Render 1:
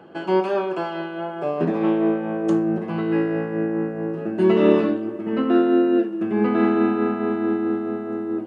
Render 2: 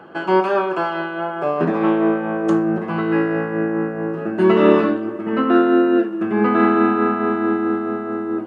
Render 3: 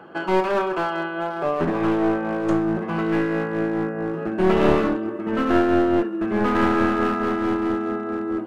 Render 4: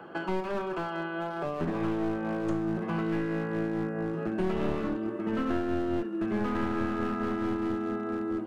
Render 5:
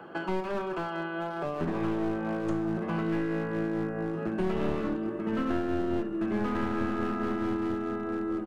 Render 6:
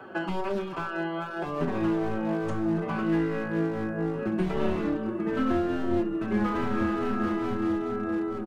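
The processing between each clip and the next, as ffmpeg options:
-af "equalizer=f=1.3k:t=o:w=1.2:g=8,volume=2dB"
-af "aeval=exprs='clip(val(0),-1,0.112)':c=same,volume=-2dB"
-filter_complex "[0:a]acrossover=split=240|3100[a][b][c];[a]acompressor=threshold=-28dB:ratio=4[d];[b]acompressor=threshold=-31dB:ratio=4[e];[c]acompressor=threshold=-53dB:ratio=4[f];[d][e][f]amix=inputs=3:normalize=0,volume=-2dB"
-filter_complex "[0:a]asplit=2[a][b];[b]adelay=1399,volume=-14dB,highshelf=f=4k:g=-31.5[c];[a][c]amix=inputs=2:normalize=0"
-filter_complex "[0:a]asplit=2[a][b];[b]adelay=4.7,afreqshift=-2.4[c];[a][c]amix=inputs=2:normalize=1,volume=5.5dB"

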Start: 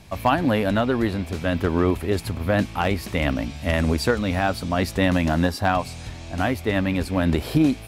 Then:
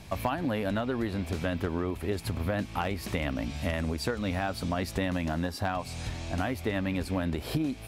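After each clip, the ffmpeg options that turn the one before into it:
-af "acompressor=threshold=-27dB:ratio=6"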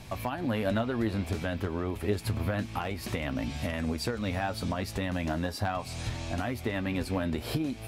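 -af "alimiter=limit=-20dB:level=0:latency=1:release=353,flanger=delay=7.9:depth=2:regen=59:speed=0.29:shape=triangular,volume=5.5dB"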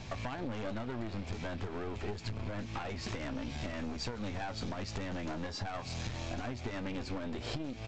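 -af "aresample=16000,aeval=exprs='clip(val(0),-1,0.0112)':c=same,aresample=44100,acompressor=threshold=-35dB:ratio=6,volume=1dB"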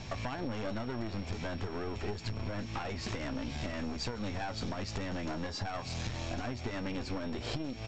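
-af "aeval=exprs='val(0)+0.00126*sin(2*PI*5500*n/s)':c=same,volume=1.5dB"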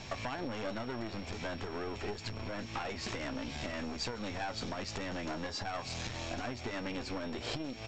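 -af "crystalizer=i=2:c=0,bass=f=250:g=-5,treble=f=4k:g=-7,bandreject=f=50:t=h:w=6,bandreject=f=100:t=h:w=6"

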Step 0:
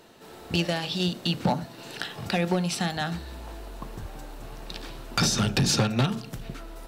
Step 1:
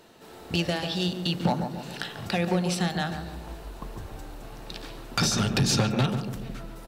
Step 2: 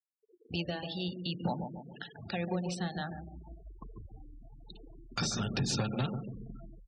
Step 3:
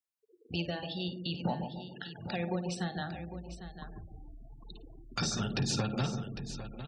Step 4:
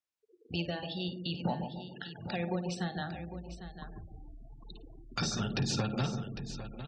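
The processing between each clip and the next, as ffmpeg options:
-filter_complex "[0:a]asplit=2[a][b];[b]adelay=142,lowpass=f=1.1k:p=1,volume=-6dB,asplit=2[c][d];[d]adelay=142,lowpass=f=1.1k:p=1,volume=0.53,asplit=2[e][f];[f]adelay=142,lowpass=f=1.1k:p=1,volume=0.53,asplit=2[g][h];[h]adelay=142,lowpass=f=1.1k:p=1,volume=0.53,asplit=2[i][j];[j]adelay=142,lowpass=f=1.1k:p=1,volume=0.53,asplit=2[k][l];[l]adelay=142,lowpass=f=1.1k:p=1,volume=0.53,asplit=2[m][n];[n]adelay=142,lowpass=f=1.1k:p=1,volume=0.53[o];[a][c][e][g][i][k][m][o]amix=inputs=8:normalize=0,volume=-1dB"
-af "afftfilt=real='re*gte(hypot(re,im),0.0316)':imag='im*gte(hypot(re,im),0.0316)':win_size=1024:overlap=0.75,volume=-8.5dB"
-af "aecho=1:1:53|803:0.2|0.266"
-af "lowpass=7.1k"

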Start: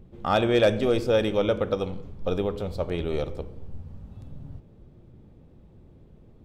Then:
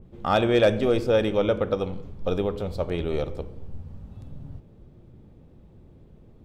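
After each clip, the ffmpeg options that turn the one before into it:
-af "adynamicequalizer=threshold=0.00794:dfrequency=3000:dqfactor=0.7:tfrequency=3000:tqfactor=0.7:attack=5:release=100:ratio=0.375:range=2:mode=cutabove:tftype=highshelf,volume=1dB"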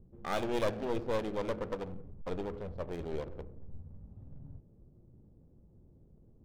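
-af "adynamicsmooth=sensitivity=4.5:basefreq=630,aeval=exprs='clip(val(0),-1,0.0299)':c=same,volume=-9dB"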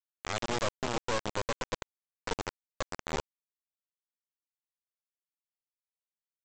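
-af "alimiter=level_in=1.5dB:limit=-24dB:level=0:latency=1:release=125,volume=-1.5dB,aresample=16000,acrusher=bits=4:mix=0:aa=0.000001,aresample=44100,volume=2dB"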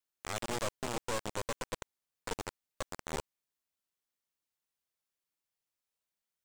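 -af "aeval=exprs='(tanh(63.1*val(0)+0.45)-tanh(0.45))/63.1':c=same,volume=7dB"

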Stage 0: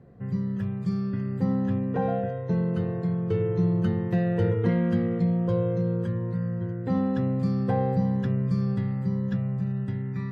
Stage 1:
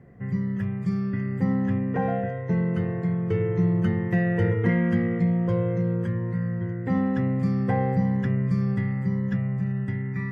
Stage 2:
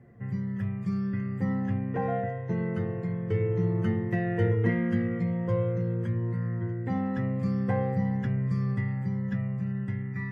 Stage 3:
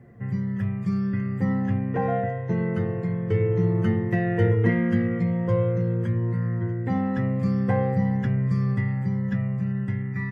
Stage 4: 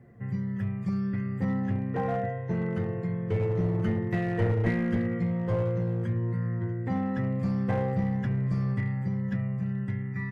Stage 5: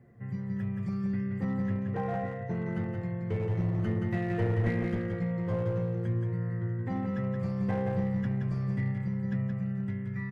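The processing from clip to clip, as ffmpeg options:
-af "equalizer=f=500:t=o:w=0.33:g=-3,equalizer=f=2k:t=o:w=0.33:g=11,equalizer=f=4k:t=o:w=0.33:g=-10,volume=1.5dB"
-af "flanger=delay=8.5:depth=1.1:regen=41:speed=0.46:shape=triangular"
-filter_complex "[0:a]asplit=2[a][b];[b]adelay=93.29,volume=-28dB,highshelf=f=4k:g=-2.1[c];[a][c]amix=inputs=2:normalize=0,volume=4.5dB"
-af "aeval=exprs='clip(val(0),-1,0.106)':c=same,volume=-4dB"
-af "aecho=1:1:174:0.596,volume=-4dB"

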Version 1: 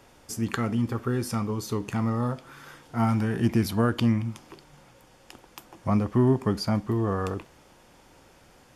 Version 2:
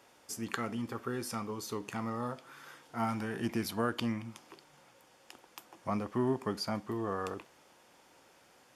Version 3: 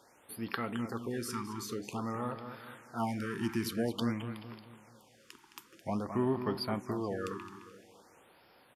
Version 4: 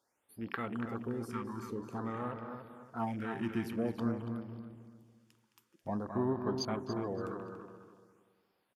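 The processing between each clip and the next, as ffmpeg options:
-af "highpass=f=410:p=1,volume=-4.5dB"
-filter_complex "[0:a]asplit=2[a][b];[b]adelay=215,lowpass=f=4.6k:p=1,volume=-9dB,asplit=2[c][d];[d]adelay=215,lowpass=f=4.6k:p=1,volume=0.43,asplit=2[e][f];[f]adelay=215,lowpass=f=4.6k:p=1,volume=0.43,asplit=2[g][h];[h]adelay=215,lowpass=f=4.6k:p=1,volume=0.43,asplit=2[i][j];[j]adelay=215,lowpass=f=4.6k:p=1,volume=0.43[k];[c][e][g][i][k]amix=inputs=5:normalize=0[l];[a][l]amix=inputs=2:normalize=0,afftfilt=real='re*(1-between(b*sr/1024,560*pow(7800/560,0.5+0.5*sin(2*PI*0.5*pts/sr))/1.41,560*pow(7800/560,0.5+0.5*sin(2*PI*0.5*pts/sr))*1.41))':imag='im*(1-between(b*sr/1024,560*pow(7800/560,0.5+0.5*sin(2*PI*0.5*pts/sr))/1.41,560*pow(7800/560,0.5+0.5*sin(2*PI*0.5*pts/sr))*1.41))':win_size=1024:overlap=0.75"
-filter_complex "[0:a]afwtdn=0.00708,highshelf=f=5.2k:g=5,asplit=2[a][b];[b]adelay=284,lowpass=f=3.4k:p=1,volume=-7.5dB,asplit=2[c][d];[d]adelay=284,lowpass=f=3.4k:p=1,volume=0.33,asplit=2[e][f];[f]adelay=284,lowpass=f=3.4k:p=1,volume=0.33,asplit=2[g][h];[h]adelay=284,lowpass=f=3.4k:p=1,volume=0.33[i];[a][c][e][g][i]amix=inputs=5:normalize=0,volume=-2dB"

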